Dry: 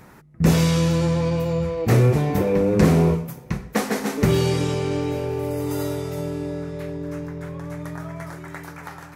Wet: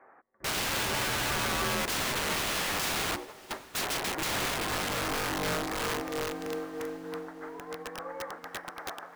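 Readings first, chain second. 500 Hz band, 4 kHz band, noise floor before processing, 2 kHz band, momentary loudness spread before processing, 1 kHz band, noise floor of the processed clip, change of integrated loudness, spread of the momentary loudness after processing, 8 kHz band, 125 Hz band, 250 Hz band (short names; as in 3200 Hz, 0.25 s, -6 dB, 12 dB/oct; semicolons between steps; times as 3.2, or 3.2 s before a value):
-12.5 dB, +2.5 dB, -44 dBFS, +1.5 dB, 16 LU, -2.0 dB, -52 dBFS, -9.5 dB, 12 LU, +1.5 dB, -22.0 dB, -16.5 dB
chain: mistuned SSB -120 Hz 550–2200 Hz; air absorption 360 m; wrapped overs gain 31 dB; diffused feedback echo 0.655 s, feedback 45%, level -16 dB; upward expander 1.5:1, over -52 dBFS; gain +5.5 dB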